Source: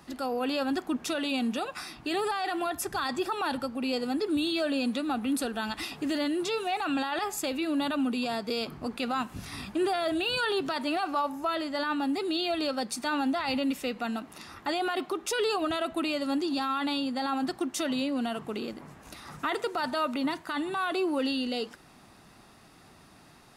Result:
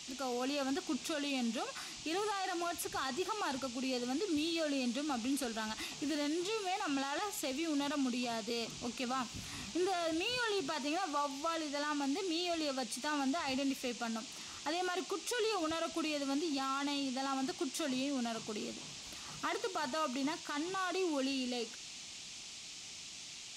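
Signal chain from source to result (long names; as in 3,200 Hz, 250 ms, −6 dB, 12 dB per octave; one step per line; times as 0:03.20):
noise in a band 2,300–7,400 Hz −42 dBFS
level −7 dB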